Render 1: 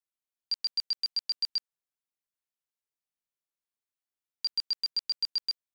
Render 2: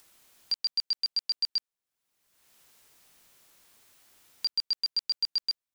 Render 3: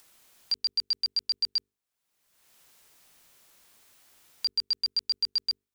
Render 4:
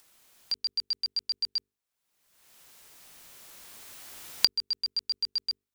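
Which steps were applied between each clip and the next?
upward compression, threshold −39 dBFS; level +1.5 dB
mains-hum notches 50/100/150/200/250/300/350/400/450 Hz; level +1 dB
camcorder AGC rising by 6.5 dB per second; level −2.5 dB

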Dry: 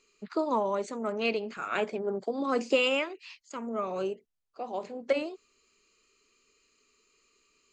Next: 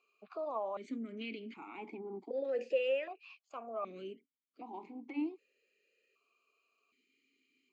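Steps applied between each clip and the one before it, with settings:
brickwall limiter −25.5 dBFS, peak gain reduction 11.5 dB
formant filter that steps through the vowels 1.3 Hz
level +5.5 dB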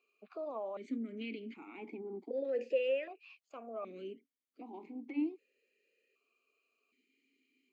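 octave-band graphic EQ 125/250/500/1,000/2,000 Hz −5/+7/+4/−5/+4 dB
level −4 dB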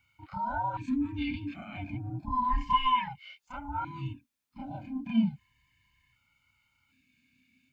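frequency inversion band by band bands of 500 Hz
backwards echo 31 ms −5 dB
level +7 dB

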